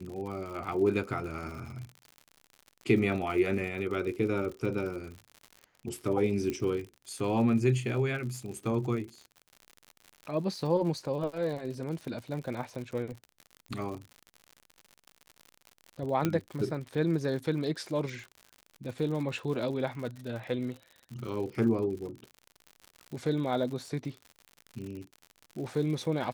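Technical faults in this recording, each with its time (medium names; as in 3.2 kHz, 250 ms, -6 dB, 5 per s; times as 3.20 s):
crackle 84 per s -38 dBFS
6.50 s: pop -20 dBFS
16.25 s: pop -14 dBFS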